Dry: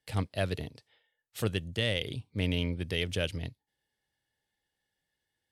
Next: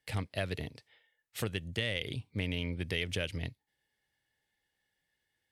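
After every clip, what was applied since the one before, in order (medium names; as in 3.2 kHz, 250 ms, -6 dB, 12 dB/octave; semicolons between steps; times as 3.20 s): compression, threshold -30 dBFS, peak gain reduction 7.5 dB; peaking EQ 2.1 kHz +5.5 dB 0.73 oct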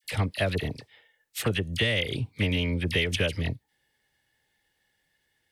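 phase dispersion lows, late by 42 ms, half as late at 1.5 kHz; trim +8.5 dB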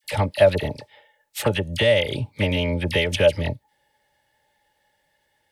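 small resonant body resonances 590/850 Hz, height 16 dB, ringing for 55 ms; trim +3 dB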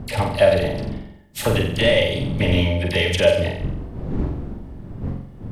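wind noise 180 Hz -30 dBFS; flutter echo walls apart 7.7 m, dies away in 0.65 s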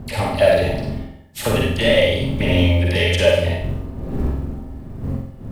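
companded quantiser 8-bit; reverberation RT60 0.20 s, pre-delay 48 ms, DRR 0 dB; trim -1 dB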